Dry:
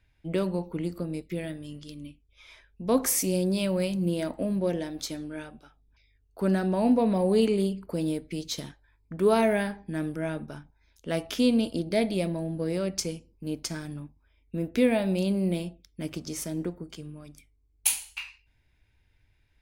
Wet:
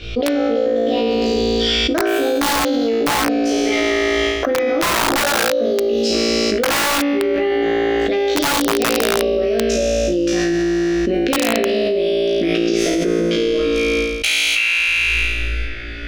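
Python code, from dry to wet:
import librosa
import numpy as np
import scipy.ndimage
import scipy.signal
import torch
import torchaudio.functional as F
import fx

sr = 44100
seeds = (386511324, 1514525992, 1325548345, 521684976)

p1 = fx.speed_glide(x, sr, from_pct=152, to_pct=92)
p2 = fx.air_absorb(p1, sr, metres=240.0)
p3 = fx.fixed_phaser(p2, sr, hz=370.0, stages=4)
p4 = p3 + fx.room_flutter(p3, sr, wall_m=3.0, rt60_s=1.4, dry=0)
p5 = (np.mod(10.0 ** (15.5 / 20.0) * p4 + 1.0, 2.0) - 1.0) / 10.0 ** (15.5 / 20.0)
p6 = fx.low_shelf(p5, sr, hz=220.0, db=-9.0)
p7 = fx.env_flatten(p6, sr, amount_pct=100)
y = p7 * librosa.db_to_amplitude(2.0)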